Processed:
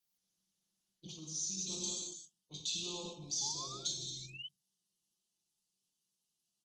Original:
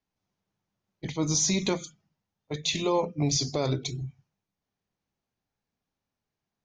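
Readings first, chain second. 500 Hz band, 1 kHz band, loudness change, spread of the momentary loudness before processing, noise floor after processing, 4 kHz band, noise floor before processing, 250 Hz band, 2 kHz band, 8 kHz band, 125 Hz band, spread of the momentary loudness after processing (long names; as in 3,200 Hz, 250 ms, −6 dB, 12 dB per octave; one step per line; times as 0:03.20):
−21.5 dB, −16.5 dB, −11.0 dB, 15 LU, below −85 dBFS, −6.5 dB, below −85 dBFS, −19.5 dB, −16.5 dB, −7.0 dB, −20.5 dB, 13 LU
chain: brickwall limiter −20.5 dBFS, peak gain reduction 6 dB
flat-topped bell 890 Hz −12 dB 2.3 octaves
reverb whose tail is shaped and stops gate 410 ms falling, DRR −2.5 dB
reversed playback
downward compressor 16 to 1, threshold −34 dBFS, peak gain reduction 15 dB
reversed playback
sound drawn into the spectrogram rise, 0:03.41–0:04.48, 810–3,100 Hz −45 dBFS
Chebyshev band-stop filter 1,200–2,800 Hz, order 3
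RIAA equalisation recording
comb filter 5.7 ms, depth 79%
level −7 dB
Opus 20 kbit/s 48,000 Hz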